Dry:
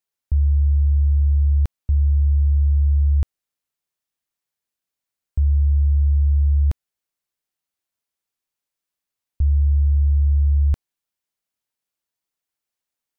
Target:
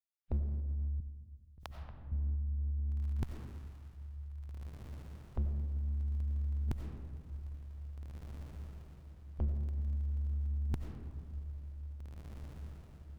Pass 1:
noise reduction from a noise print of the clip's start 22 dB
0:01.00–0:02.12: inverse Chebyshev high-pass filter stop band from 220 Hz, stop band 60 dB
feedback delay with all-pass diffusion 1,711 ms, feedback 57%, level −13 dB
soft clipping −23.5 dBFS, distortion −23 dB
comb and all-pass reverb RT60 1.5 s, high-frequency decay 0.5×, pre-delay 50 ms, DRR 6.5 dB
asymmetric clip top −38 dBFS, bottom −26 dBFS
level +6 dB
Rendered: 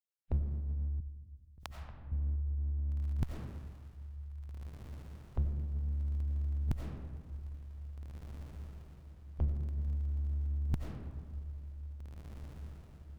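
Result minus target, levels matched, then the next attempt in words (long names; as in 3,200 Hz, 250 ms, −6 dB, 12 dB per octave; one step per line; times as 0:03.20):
soft clipping: distortion −9 dB
noise reduction from a noise print of the clip's start 22 dB
0:01.00–0:02.12: inverse Chebyshev high-pass filter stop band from 220 Hz, stop band 60 dB
feedback delay with all-pass diffusion 1,711 ms, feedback 57%, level −13 dB
soft clipping −31.5 dBFS, distortion −14 dB
comb and all-pass reverb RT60 1.5 s, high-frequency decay 0.5×, pre-delay 50 ms, DRR 6.5 dB
asymmetric clip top −38 dBFS, bottom −26 dBFS
level +6 dB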